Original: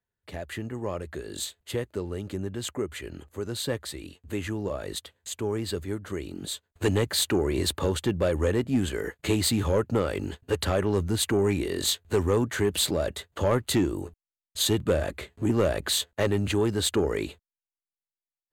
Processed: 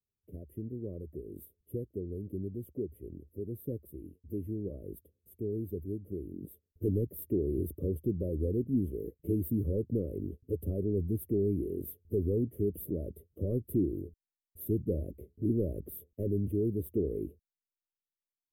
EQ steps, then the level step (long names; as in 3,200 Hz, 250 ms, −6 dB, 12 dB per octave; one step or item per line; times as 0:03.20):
inverse Chebyshev band-stop filter 820–7,600 Hz, stop band 40 dB
−4.5 dB